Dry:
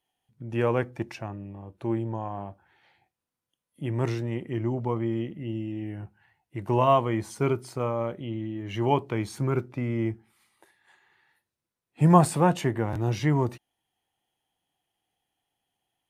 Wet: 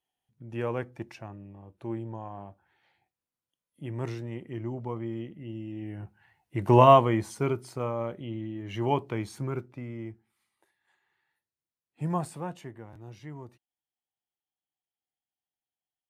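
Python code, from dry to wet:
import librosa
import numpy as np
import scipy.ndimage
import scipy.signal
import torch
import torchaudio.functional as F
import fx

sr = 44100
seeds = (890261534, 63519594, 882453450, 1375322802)

y = fx.gain(x, sr, db=fx.line((5.54, -6.5), (6.79, 6.0), (7.47, -3.0), (9.14, -3.0), (10.06, -11.5), (12.02, -11.5), (12.99, -19.0)))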